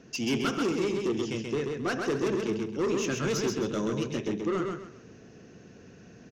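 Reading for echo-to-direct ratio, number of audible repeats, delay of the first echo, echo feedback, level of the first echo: −3.5 dB, 3, 132 ms, 29%, −4.0 dB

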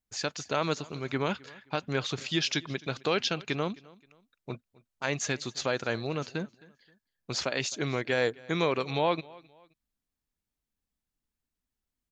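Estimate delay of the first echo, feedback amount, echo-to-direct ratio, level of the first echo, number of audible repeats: 263 ms, 34%, −22.5 dB, −23.0 dB, 2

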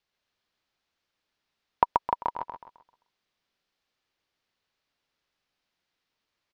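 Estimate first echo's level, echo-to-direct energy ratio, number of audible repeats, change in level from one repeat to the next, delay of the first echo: −3.0 dB, −2.5 dB, 4, −9.0 dB, 131 ms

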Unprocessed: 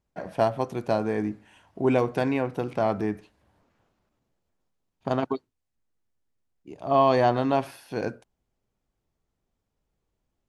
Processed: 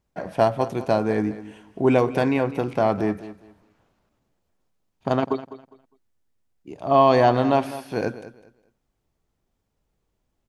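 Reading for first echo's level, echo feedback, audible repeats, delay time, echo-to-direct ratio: −15.0 dB, 24%, 2, 203 ms, −14.5 dB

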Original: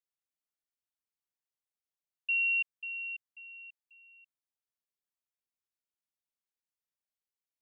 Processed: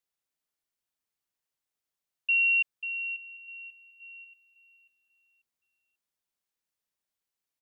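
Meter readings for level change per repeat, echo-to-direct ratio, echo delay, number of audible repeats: −5.5 dB, −21.0 dB, 856 ms, 2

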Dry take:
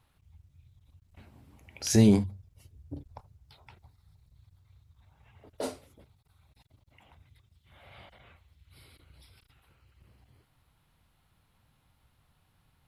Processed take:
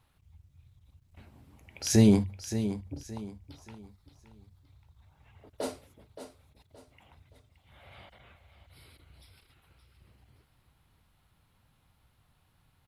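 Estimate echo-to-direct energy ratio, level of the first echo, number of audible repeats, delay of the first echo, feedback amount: −10.5 dB, −11.0 dB, 3, 572 ms, 33%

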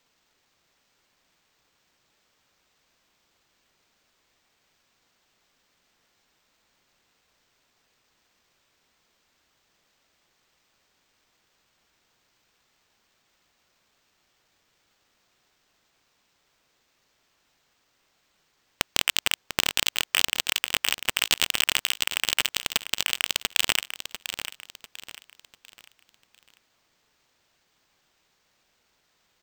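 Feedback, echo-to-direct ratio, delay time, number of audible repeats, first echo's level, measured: 36%, −9.5 dB, 696 ms, 3, −10.0 dB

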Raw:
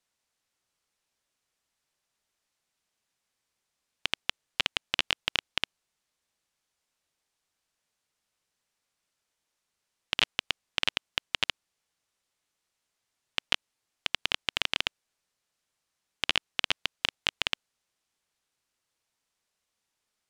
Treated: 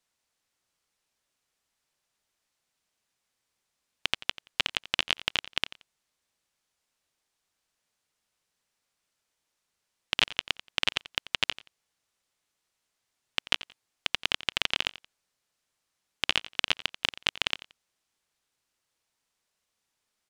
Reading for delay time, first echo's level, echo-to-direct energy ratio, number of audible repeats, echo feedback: 88 ms, −17.0 dB, −17.0 dB, 2, 22%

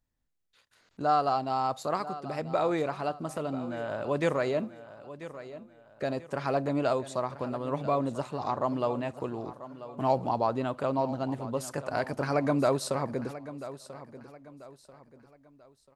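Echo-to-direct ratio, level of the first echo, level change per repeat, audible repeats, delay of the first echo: −14.0 dB, −14.5 dB, −9.0 dB, 3, 989 ms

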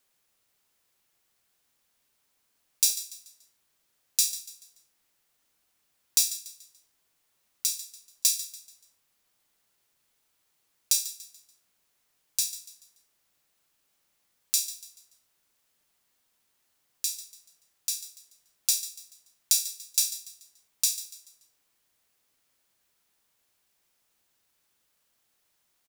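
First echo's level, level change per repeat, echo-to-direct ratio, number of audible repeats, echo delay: −14.5 dB, −8.5 dB, −14.0 dB, 3, 144 ms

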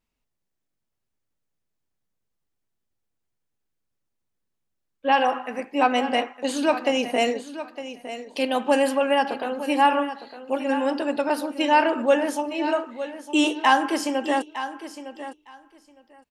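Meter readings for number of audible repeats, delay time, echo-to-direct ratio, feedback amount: 2, 909 ms, −12.5 dB, 15%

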